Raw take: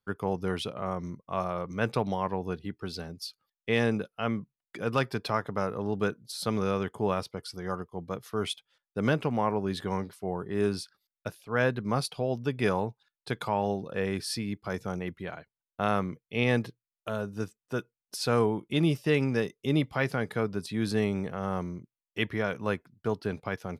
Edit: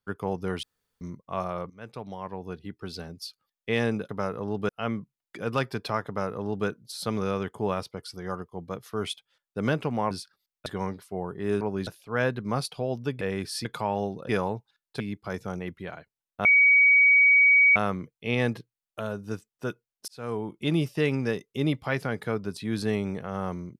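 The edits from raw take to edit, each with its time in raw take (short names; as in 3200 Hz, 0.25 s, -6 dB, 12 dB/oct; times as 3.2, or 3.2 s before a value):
0.63–1.01 room tone
1.7–3.01 fade in, from -20 dB
5.47–6.07 copy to 4.09
9.51–9.77 swap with 10.72–11.27
12.61–13.32 swap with 13.96–14.4
15.85 add tone 2260 Hz -14.5 dBFS 1.31 s
18.17–18.71 fade in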